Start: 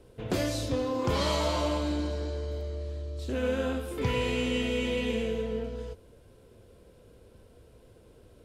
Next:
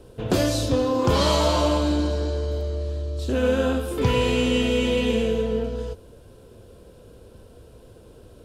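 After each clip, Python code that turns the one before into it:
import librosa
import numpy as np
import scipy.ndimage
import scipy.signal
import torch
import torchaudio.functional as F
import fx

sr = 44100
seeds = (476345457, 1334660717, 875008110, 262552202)

y = fx.peak_eq(x, sr, hz=2100.0, db=-7.0, octaves=0.36)
y = F.gain(torch.from_numpy(y), 8.0).numpy()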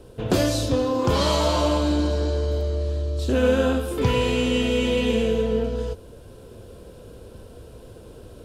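y = fx.rider(x, sr, range_db=10, speed_s=2.0)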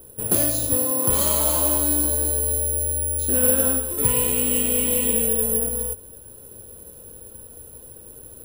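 y = (np.kron(scipy.signal.resample_poly(x, 1, 4), np.eye(4)[0]) * 4)[:len(x)]
y = F.gain(torch.from_numpy(y), -5.5).numpy()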